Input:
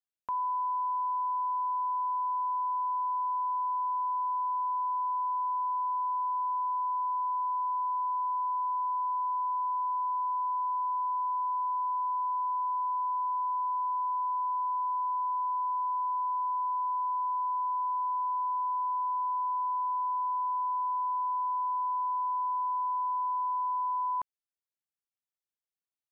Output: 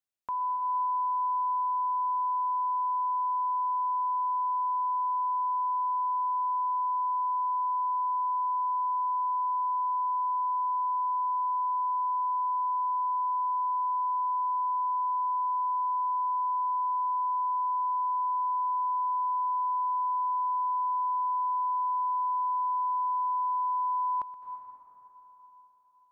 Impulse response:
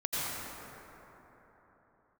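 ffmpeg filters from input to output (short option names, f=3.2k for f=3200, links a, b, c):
-filter_complex "[0:a]asplit=2[a][b];[1:a]atrim=start_sample=2205,adelay=124[c];[b][c]afir=irnorm=-1:irlink=0,volume=-15.5dB[d];[a][d]amix=inputs=2:normalize=0"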